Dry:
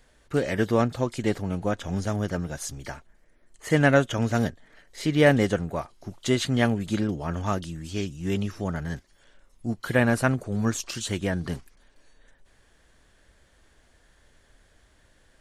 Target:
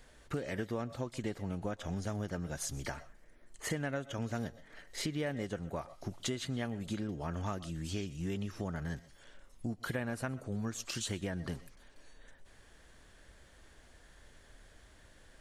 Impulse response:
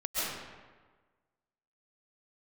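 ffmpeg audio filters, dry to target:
-filter_complex "[0:a]asplit=2[a][b];[1:a]atrim=start_sample=2205,afade=t=out:st=0.18:d=0.01,atrim=end_sample=8379[c];[b][c]afir=irnorm=-1:irlink=0,volume=-17dB[d];[a][d]amix=inputs=2:normalize=0,acompressor=threshold=-35dB:ratio=6"

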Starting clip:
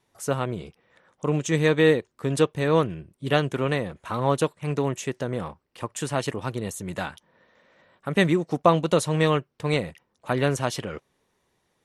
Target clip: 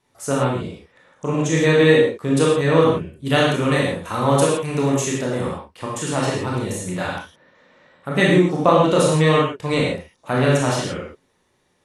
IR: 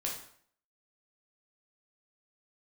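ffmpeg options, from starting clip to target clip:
-filter_complex "[0:a]asettb=1/sr,asplit=3[a][b][c];[a]atrim=end=3.254[d];[b]atrim=start=3.25:end=5.42,asetpts=PTS-STARTPTS,afade=t=in:d=0.004:c=qsin,afade=t=out:st=2.166:d=0.004:c=qsin,highshelf=f=5.6k:g=9.5[e];[c]atrim=start=5.416[f];[d][e]acrossfade=d=0.004:c1=hsin:c2=qsin[g];[g][f]acrossfade=d=0.004:c1=qsin:c2=hsin[h];[1:a]atrim=start_sample=2205,atrim=end_sample=3969,asetrate=22491,aresample=44100[i];[h][i]afir=irnorm=-1:irlink=0,volume=-1dB"

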